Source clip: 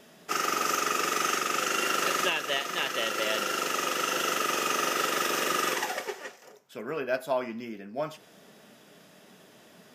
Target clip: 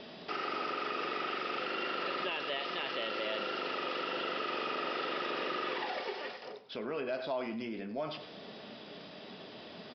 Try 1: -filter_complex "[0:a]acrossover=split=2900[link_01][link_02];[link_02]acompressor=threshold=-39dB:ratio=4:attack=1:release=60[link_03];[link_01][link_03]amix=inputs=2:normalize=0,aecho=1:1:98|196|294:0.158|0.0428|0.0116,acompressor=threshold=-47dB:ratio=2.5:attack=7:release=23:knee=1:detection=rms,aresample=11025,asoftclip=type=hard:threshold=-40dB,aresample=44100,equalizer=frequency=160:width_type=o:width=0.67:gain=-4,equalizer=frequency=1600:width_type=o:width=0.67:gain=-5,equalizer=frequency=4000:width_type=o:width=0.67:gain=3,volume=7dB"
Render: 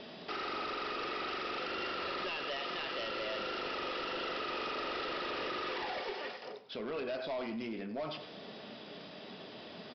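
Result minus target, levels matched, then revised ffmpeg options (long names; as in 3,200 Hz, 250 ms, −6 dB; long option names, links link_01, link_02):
hard clipping: distortion +25 dB
-filter_complex "[0:a]acrossover=split=2900[link_01][link_02];[link_02]acompressor=threshold=-39dB:ratio=4:attack=1:release=60[link_03];[link_01][link_03]amix=inputs=2:normalize=0,aecho=1:1:98|196|294:0.158|0.0428|0.0116,acompressor=threshold=-47dB:ratio=2.5:attack=7:release=23:knee=1:detection=rms,aresample=11025,asoftclip=type=hard:threshold=-31.5dB,aresample=44100,equalizer=frequency=160:width_type=o:width=0.67:gain=-4,equalizer=frequency=1600:width_type=o:width=0.67:gain=-5,equalizer=frequency=4000:width_type=o:width=0.67:gain=3,volume=7dB"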